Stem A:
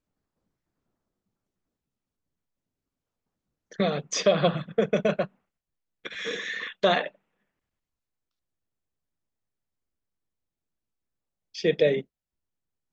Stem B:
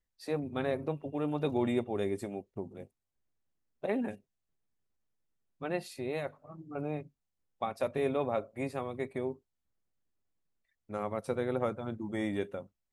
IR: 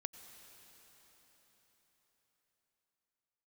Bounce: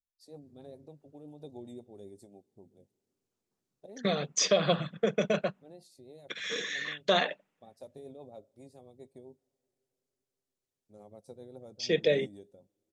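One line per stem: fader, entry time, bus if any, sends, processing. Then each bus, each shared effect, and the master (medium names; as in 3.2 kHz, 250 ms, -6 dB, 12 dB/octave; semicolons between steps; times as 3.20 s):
-4.5 dB, 0.25 s, no send, high-pass 77 Hz 24 dB/octave
-15.0 dB, 0.00 s, send -19 dB, high-order bell 1.8 kHz -16 dB; rotary cabinet horn 7.5 Hz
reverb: on, RT60 4.8 s, pre-delay 83 ms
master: peaking EQ 7 kHz +7.5 dB 2 oct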